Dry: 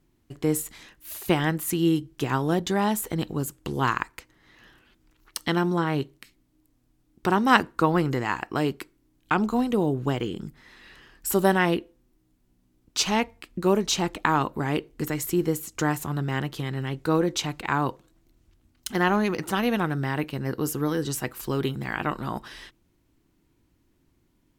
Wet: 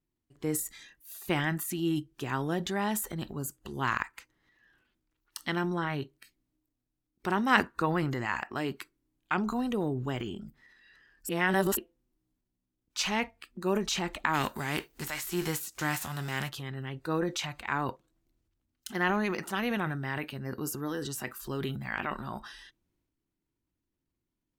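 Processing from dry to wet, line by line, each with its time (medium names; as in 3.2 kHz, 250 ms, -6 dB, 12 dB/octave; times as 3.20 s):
11.29–11.77 s: reverse
14.33–16.48 s: formants flattened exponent 0.6
whole clip: spectral noise reduction 12 dB; dynamic bell 2 kHz, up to +6 dB, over -39 dBFS, Q 1.4; transient shaper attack -1 dB, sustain +7 dB; trim -7.5 dB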